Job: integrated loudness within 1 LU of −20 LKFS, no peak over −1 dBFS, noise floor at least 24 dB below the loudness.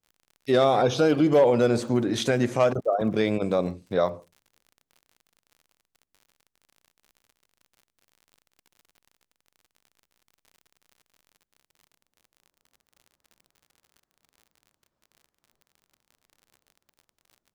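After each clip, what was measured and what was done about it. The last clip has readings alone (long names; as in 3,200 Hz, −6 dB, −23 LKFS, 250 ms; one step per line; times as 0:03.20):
crackle rate 54 per second; integrated loudness −23.0 LKFS; sample peak −10.0 dBFS; target loudness −20.0 LKFS
→ click removal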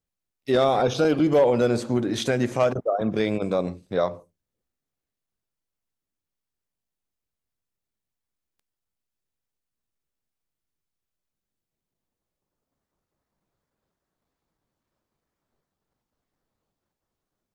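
crackle rate 0.11 per second; integrated loudness −23.0 LKFS; sample peak −10.0 dBFS; target loudness −20.0 LKFS
→ level +3 dB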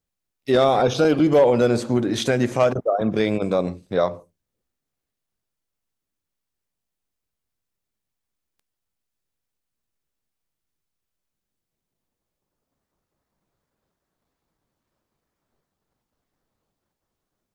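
integrated loudness −20.0 LKFS; sample peak −7.0 dBFS; background noise floor −83 dBFS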